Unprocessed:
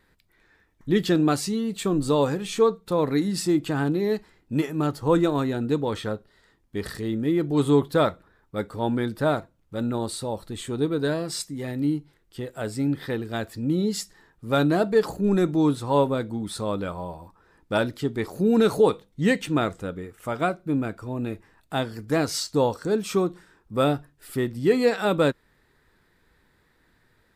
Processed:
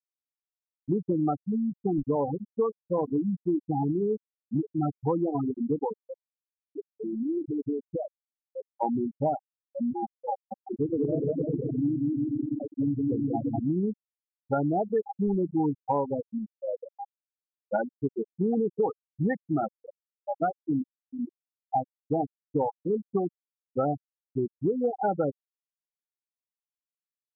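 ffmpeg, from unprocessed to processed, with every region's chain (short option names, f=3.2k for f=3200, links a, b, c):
-filter_complex "[0:a]asettb=1/sr,asplit=3[a][b][c];[a]atrim=end=6.034[d];[b]atrim=start=6.03:end=8.7,asetpts=PTS-STARTPTS,afade=t=in:d=0.004:c=qsin,afade=t=out:st=2.666:d=0.004:c=qsin,adynamicequalizer=threshold=0.0251:dfrequency=360:dqfactor=0.8:tfrequency=360:tqfactor=0.8:attack=5:release=100:ratio=0.375:range=3.5:mode=boostabove:tftype=bell,acompressor=threshold=-24dB:ratio=16:attack=3.2:release=140:knee=1:detection=peak[e];[c]atrim=start=8.696[f];[d][e]acrossfade=d=0.004:c1=hsin:c2=qsin[g];[g][f]acrossfade=d=0.004:c1=qsin:c2=hsin,asettb=1/sr,asplit=3[h][i][j];[h]atrim=end=10.324[k];[i]atrim=start=10.32:end=13.6,asetpts=PTS-STARTPTS,afade=t=in:d=0.004:c=qsin,afade=t=out:st=3.276:d=0.004:c=qsin,equalizer=f=5.7k:w=0.32:g=-8.5,aecho=1:1:190|342|463.6|560.9|638.7|701|750.8|790.6|822.5:0.794|0.631|0.501|0.398|0.316|0.251|0.2|0.158|0.126,atrim=end_sample=144648[l];[j]atrim=start=13.596[m];[k][l]acrossfade=d=0.004:c1=hsin:c2=qsin[n];[n][m]acrossfade=d=0.004:c1=qsin:c2=hsin,equalizer=f=780:w=6.8:g=13,afftfilt=real='re*gte(hypot(re,im),0.316)':imag='im*gte(hypot(re,im),0.316)':win_size=1024:overlap=0.75,acompressor=threshold=-23dB:ratio=6"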